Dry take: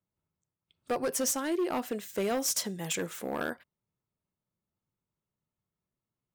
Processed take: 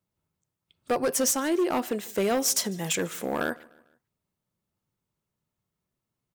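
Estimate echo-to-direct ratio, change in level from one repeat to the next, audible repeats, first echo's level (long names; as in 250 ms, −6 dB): −23.0 dB, −6.5 dB, 2, −24.0 dB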